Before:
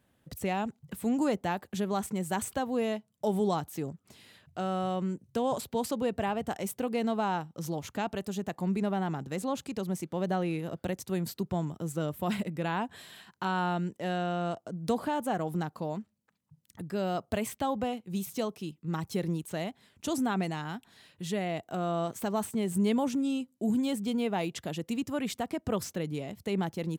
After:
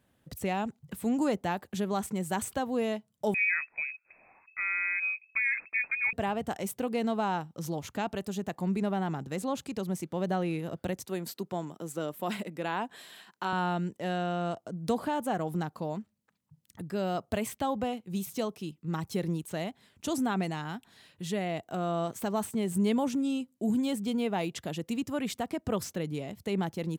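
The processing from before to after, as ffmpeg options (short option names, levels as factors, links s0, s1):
-filter_complex "[0:a]asettb=1/sr,asplit=3[s0][s1][s2];[s0]atrim=end=3.344[s3];[s1]atrim=start=3.34:end=6.13,asetpts=PTS-STARTPTS,afade=t=in:d=0.004:c=qsin,afade=t=out:st=2.786:d=0.004:c=qsin,lowpass=f=2300:t=q:w=0.5098,lowpass=f=2300:t=q:w=0.6013,lowpass=f=2300:t=q:w=0.9,lowpass=f=2300:t=q:w=2.563,afreqshift=-2700[s4];[s2]atrim=start=6.126[s5];[s3][s4]acrossfade=d=0.004:c1=hsin:c2=qsin[s6];[s6][s5]acrossfade=d=0.004:c1=qsin:c2=hsin,asettb=1/sr,asplit=3[s7][s8][s9];[s7]atrim=end=11.054[s10];[s8]atrim=start=11.05:end=13.53,asetpts=PTS-STARTPTS,afade=t=in:d=0.004:c=qsin,afade=t=out:st=2.476:d=0.004:c=qsin,highpass=250[s11];[s9]atrim=start=13.526[s12];[s10][s11]acrossfade=d=0.004:c1=hsin:c2=qsin[s13];[s13][s12]acrossfade=d=0.004:c1=qsin:c2=hsin"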